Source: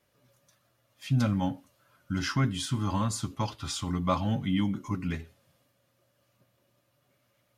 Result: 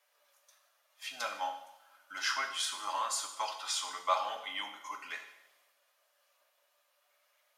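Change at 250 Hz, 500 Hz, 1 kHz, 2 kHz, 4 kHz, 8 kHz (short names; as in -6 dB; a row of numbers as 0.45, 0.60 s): -32.0, -5.5, +1.0, +2.0, +1.5, +1.5 dB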